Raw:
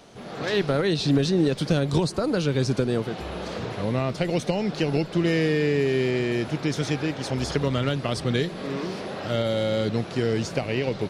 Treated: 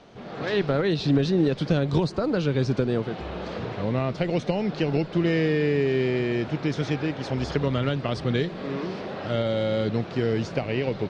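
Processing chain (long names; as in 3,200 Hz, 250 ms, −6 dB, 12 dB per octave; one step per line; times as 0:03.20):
high-frequency loss of the air 140 metres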